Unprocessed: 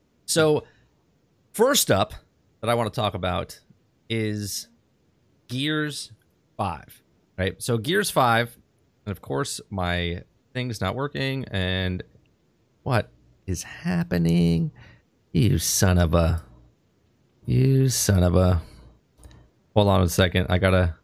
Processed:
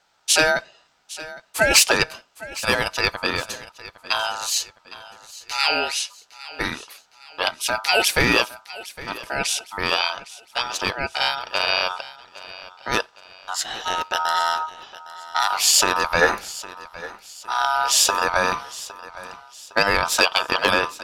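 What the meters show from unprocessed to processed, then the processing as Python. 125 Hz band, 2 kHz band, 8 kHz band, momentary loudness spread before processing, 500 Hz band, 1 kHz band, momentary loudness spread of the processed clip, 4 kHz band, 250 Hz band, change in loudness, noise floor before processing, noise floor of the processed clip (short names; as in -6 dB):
-16.0 dB, +9.0 dB, +6.5 dB, 14 LU, -2.0 dB, +6.0 dB, 21 LU, +8.5 dB, -8.5 dB, +3.0 dB, -65 dBFS, -58 dBFS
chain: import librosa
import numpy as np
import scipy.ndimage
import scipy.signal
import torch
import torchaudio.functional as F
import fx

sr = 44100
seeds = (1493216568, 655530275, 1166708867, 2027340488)

p1 = fx.weighting(x, sr, curve='D')
p2 = fx.spec_box(p1, sr, start_s=16.21, length_s=0.31, low_hz=210.0, high_hz=1200.0, gain_db=11)
p3 = fx.dynamic_eq(p2, sr, hz=3200.0, q=2.4, threshold_db=-30.0, ratio=4.0, max_db=-4)
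p4 = 10.0 ** (-8.5 / 20.0) * (np.abs((p3 / 10.0 ** (-8.5 / 20.0) + 3.0) % 4.0 - 2.0) - 1.0)
p5 = p3 + (p4 * librosa.db_to_amplitude(-6.0))
p6 = p5 * np.sin(2.0 * np.pi * 1100.0 * np.arange(len(p5)) / sr)
y = p6 + fx.echo_feedback(p6, sr, ms=810, feedback_pct=42, wet_db=-17.5, dry=0)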